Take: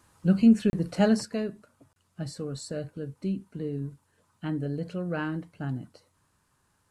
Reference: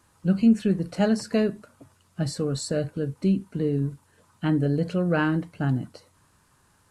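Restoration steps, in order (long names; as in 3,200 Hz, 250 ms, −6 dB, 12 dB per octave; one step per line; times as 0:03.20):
repair the gap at 0:00.70/0:01.93, 31 ms
level 0 dB, from 0:01.25 +8 dB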